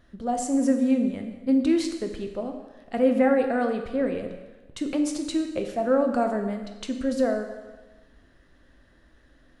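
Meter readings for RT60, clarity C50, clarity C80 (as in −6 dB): 1.2 s, 7.0 dB, 8.5 dB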